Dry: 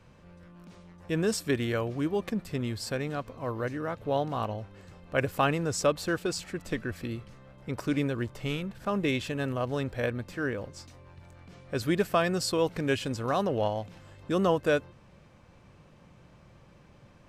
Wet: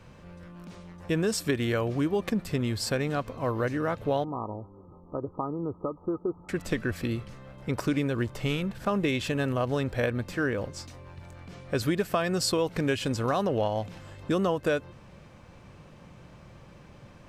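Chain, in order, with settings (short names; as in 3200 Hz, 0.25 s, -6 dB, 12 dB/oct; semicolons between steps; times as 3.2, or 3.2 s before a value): compressor 6:1, threshold -28 dBFS, peak gain reduction 9 dB; 4.24–6.49 rippled Chebyshev low-pass 1300 Hz, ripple 9 dB; gain +5.5 dB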